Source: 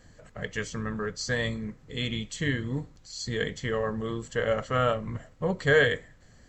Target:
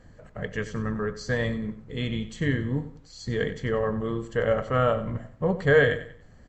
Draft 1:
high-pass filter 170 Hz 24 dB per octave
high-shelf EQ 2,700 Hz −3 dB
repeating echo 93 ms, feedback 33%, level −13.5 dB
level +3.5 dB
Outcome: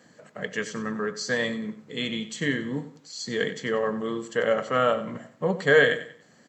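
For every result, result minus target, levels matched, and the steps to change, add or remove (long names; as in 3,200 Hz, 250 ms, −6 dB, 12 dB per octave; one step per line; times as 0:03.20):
125 Hz band −9.0 dB; 4,000 Hz band +6.0 dB
remove: high-pass filter 170 Hz 24 dB per octave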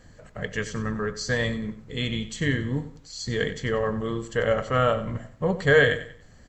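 4,000 Hz band +5.5 dB
change: high-shelf EQ 2,700 Hz −13.5 dB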